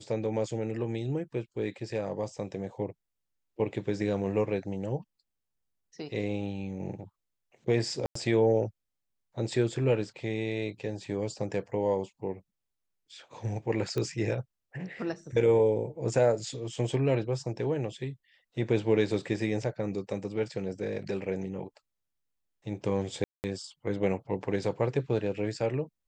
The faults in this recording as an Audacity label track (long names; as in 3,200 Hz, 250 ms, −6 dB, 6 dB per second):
8.060000	8.150000	drop-out 94 ms
13.980000	13.980000	click −19 dBFS
23.240000	23.440000	drop-out 199 ms